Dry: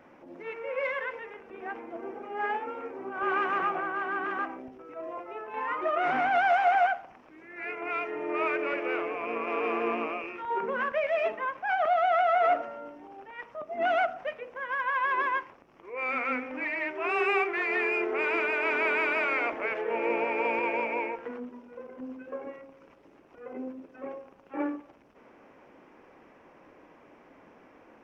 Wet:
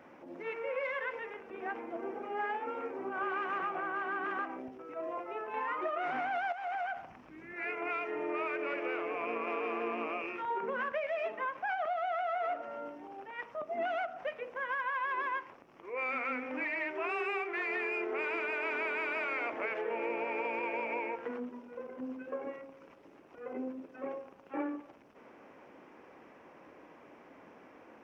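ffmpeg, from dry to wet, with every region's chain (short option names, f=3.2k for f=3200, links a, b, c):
-filter_complex "[0:a]asettb=1/sr,asplit=3[a][b][c];[a]atrim=end=6.524[d];[b]atrim=start=6.52:end=7.54,asetpts=PTS-STARTPTS,afade=t=in:d=0.004:c=qsin,afade=t=out:st=1.016:d=0.004:c=qsin,asubboost=boost=12:cutoff=220,acompressor=threshold=-31dB:ratio=6:attack=3.2:release=140:knee=1:detection=peak[e];[c]atrim=start=7.536[f];[d][e]acrossfade=d=0.004:c1=hsin:c2=qsin[g];[g][f]acrossfade=d=0.004:c1=qsin:c2=hsin,acompressor=threshold=-32dB:ratio=6,highpass=f=93:p=1"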